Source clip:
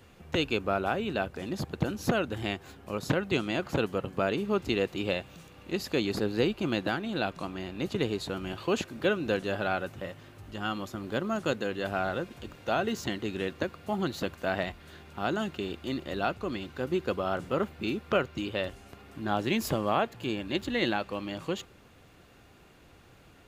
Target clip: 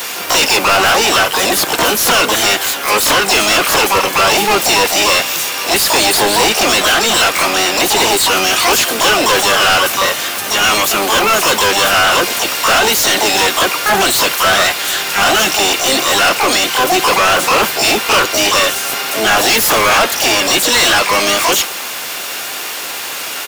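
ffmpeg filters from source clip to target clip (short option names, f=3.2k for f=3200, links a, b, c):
-filter_complex "[0:a]aemphasis=mode=production:type=riaa,asplit=3[a][b][c];[b]asetrate=35002,aresample=44100,atempo=1.25992,volume=-11dB[d];[c]asetrate=88200,aresample=44100,atempo=0.5,volume=-1dB[e];[a][d][e]amix=inputs=3:normalize=0,asplit=2[f][g];[g]highpass=f=720:p=1,volume=36dB,asoftclip=type=tanh:threshold=-7dB[h];[f][h]amix=inputs=2:normalize=0,lowpass=f=7k:p=1,volume=-6dB,volume=3.5dB"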